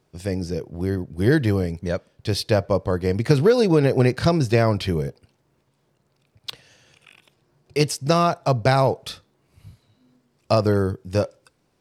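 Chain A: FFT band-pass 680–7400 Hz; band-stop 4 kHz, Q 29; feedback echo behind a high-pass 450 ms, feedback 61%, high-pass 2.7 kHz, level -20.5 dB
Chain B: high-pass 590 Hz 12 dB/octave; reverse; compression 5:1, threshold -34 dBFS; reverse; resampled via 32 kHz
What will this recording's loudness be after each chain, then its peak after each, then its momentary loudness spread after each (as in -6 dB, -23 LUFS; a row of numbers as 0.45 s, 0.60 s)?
-30.0 LUFS, -38.5 LUFS; -7.5 dBFS, -17.0 dBFS; 18 LU, 7 LU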